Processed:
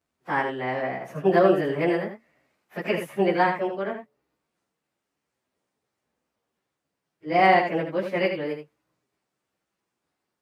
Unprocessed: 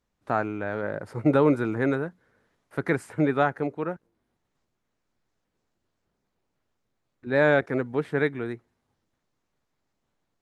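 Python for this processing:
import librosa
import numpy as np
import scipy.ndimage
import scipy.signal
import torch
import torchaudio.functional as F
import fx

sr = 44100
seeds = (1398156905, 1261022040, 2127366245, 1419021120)

y = fx.pitch_bins(x, sr, semitones=4.0)
y = fx.highpass(y, sr, hz=180.0, slope=6)
y = np.clip(y, -10.0 ** (-12.0 / 20.0), 10.0 ** (-12.0 / 20.0))
y = y + 10.0 ** (-7.0 / 20.0) * np.pad(y, (int(78 * sr / 1000.0), 0))[:len(y)]
y = y * librosa.db_to_amplitude(3.5)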